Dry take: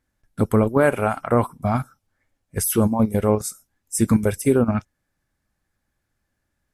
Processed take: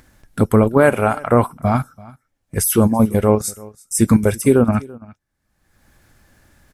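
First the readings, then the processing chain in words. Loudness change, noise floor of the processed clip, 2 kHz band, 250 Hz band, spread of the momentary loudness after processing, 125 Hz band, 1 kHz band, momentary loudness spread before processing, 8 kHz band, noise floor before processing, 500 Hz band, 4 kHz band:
+4.5 dB, -73 dBFS, +4.5 dB, +4.5 dB, 10 LU, +4.5 dB, +4.5 dB, 10 LU, +4.5 dB, -77 dBFS, +4.5 dB, +4.5 dB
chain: gate with hold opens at -47 dBFS; upward compressor, threshold -28 dBFS; echo 0.336 s -22.5 dB; gain +4.5 dB

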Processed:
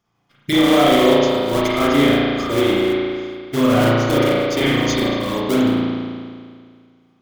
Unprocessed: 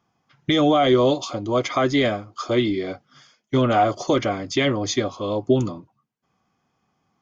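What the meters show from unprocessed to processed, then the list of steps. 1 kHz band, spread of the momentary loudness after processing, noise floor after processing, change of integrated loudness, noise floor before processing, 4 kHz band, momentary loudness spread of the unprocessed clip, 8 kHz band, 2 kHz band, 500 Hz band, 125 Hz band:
+2.0 dB, 12 LU, -59 dBFS, +4.5 dB, -74 dBFS, +5.5 dB, 12 LU, n/a, +6.5 dB, +4.0 dB, +3.5 dB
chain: in parallel at -4 dB: decimation with a swept rate 29×, swing 160% 3.5 Hz; on the sum: high shelf 2100 Hz +7.5 dB; spring tank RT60 2 s, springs 35 ms, chirp 20 ms, DRR -7.5 dB; gain -7.5 dB

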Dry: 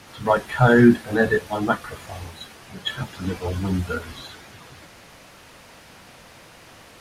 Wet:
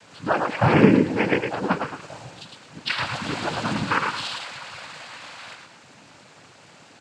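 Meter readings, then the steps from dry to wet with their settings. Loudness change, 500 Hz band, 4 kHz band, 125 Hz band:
-1.5 dB, -2.0 dB, +3.0 dB, -2.0 dB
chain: spectral gain 2.9–5.54, 730–5100 Hz +12 dB; feedback echo 0.109 s, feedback 31%, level -4.5 dB; noise vocoder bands 8; gain -3 dB

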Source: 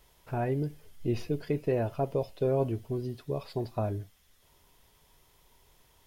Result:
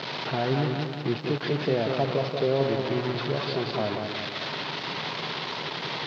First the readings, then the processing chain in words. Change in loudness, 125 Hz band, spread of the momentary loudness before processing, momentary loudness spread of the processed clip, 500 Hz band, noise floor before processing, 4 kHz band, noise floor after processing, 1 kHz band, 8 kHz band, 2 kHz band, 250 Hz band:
+4.5 dB, +3.0 dB, 8 LU, 5 LU, +5.0 dB, -65 dBFS, +23.0 dB, -35 dBFS, +9.0 dB, n/a, +17.0 dB, +5.0 dB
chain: delta modulation 32 kbps, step -29.5 dBFS; in parallel at -1.5 dB: limiter -25.5 dBFS, peak gain reduction 8.5 dB; on the sum: added noise violet -40 dBFS; elliptic band-pass 140–4200 Hz, stop band 40 dB; warbling echo 0.185 s, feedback 52%, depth 80 cents, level -5 dB

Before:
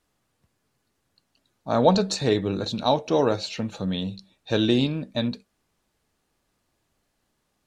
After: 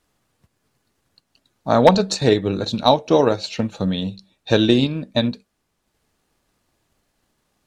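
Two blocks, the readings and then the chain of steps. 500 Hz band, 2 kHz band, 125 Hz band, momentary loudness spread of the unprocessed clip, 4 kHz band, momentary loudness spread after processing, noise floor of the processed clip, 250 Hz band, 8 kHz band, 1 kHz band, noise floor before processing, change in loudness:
+6.0 dB, +6.5 dB, +5.0 dB, 11 LU, +5.0 dB, 11 LU, -73 dBFS, +5.0 dB, +4.0 dB, +6.0 dB, -74 dBFS, +5.5 dB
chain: transient shaper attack +4 dB, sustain -4 dB; wavefolder -5.5 dBFS; gain +4.5 dB

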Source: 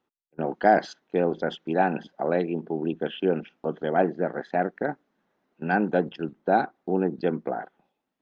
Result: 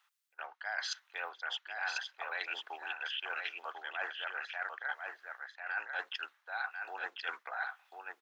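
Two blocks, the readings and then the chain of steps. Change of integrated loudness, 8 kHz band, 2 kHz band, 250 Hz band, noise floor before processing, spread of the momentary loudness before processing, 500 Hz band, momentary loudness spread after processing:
-13.0 dB, n/a, -2.0 dB, under -40 dB, -81 dBFS, 9 LU, -26.0 dB, 7 LU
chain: HPF 1200 Hz 24 dB/oct; reverse; compressor 8:1, threshold -47 dBFS, peak gain reduction 21.5 dB; reverse; echo 1.045 s -5 dB; gain +11 dB

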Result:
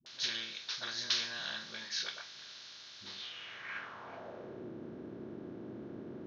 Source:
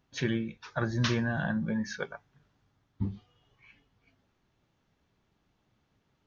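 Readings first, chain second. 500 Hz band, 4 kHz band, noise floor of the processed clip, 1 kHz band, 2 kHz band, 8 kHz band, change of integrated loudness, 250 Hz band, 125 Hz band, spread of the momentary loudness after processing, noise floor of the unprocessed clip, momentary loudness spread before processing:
-8.5 dB, +7.5 dB, -52 dBFS, -6.0 dB, -4.0 dB, n/a, -7.5 dB, -13.5 dB, -20.5 dB, 15 LU, -75 dBFS, 11 LU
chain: per-bin compression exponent 0.4; band-pass sweep 4400 Hz -> 320 Hz, 3.06–4.66; dispersion highs, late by 62 ms, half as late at 370 Hz; gain +4.5 dB

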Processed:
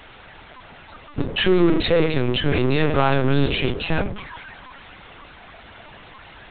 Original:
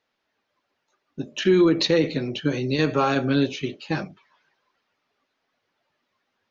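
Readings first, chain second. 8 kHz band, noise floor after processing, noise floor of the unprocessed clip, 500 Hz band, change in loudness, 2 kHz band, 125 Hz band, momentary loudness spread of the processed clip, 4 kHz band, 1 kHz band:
n/a, -45 dBFS, -77 dBFS, +2.0 dB, +2.0 dB, +5.0 dB, +5.5 dB, 18 LU, +3.5 dB, +3.5 dB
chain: low shelf 67 Hz -6 dB; notches 60/120/180/240/300/360/420/480 Hz; in parallel at -2 dB: limiter -18 dBFS, peak gain reduction 9 dB; on the sum: power-law curve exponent 0.5; LPC vocoder at 8 kHz pitch kept; gain -3.5 dB

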